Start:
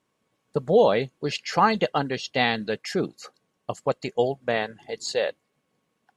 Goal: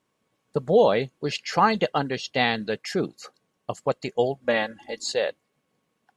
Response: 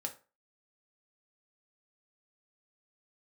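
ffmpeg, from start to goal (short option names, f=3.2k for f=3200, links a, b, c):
-filter_complex "[0:a]asettb=1/sr,asplit=3[a][b][c];[a]atrim=end=4.444[d];[b]atrim=start=4.44:end=5.12,asetpts=PTS-STARTPTS,afade=t=in:d=0.004:c=qsin,afade=t=out:st=0.676:d=0.004:c=qsin,aecho=1:1:3.6:0.76,atrim=end_sample=29988[e];[c]atrim=start=5.116[f];[d][e]acrossfade=d=0.004:c1=hsin:c2=qsin[g];[g][f]acrossfade=d=0.004:c1=qsin:c2=hsin"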